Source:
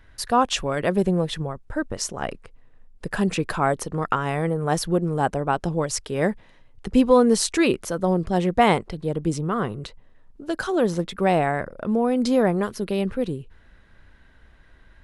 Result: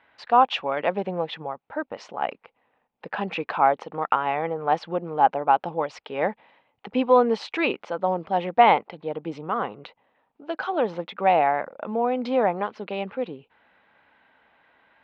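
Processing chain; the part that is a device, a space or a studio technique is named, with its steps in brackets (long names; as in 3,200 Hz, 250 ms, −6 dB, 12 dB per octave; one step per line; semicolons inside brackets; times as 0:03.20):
phone earpiece (loudspeaker in its box 350–3,300 Hz, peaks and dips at 370 Hz −7 dB, 830 Hz +8 dB, 1,700 Hz −4 dB, 2,400 Hz +3 dB)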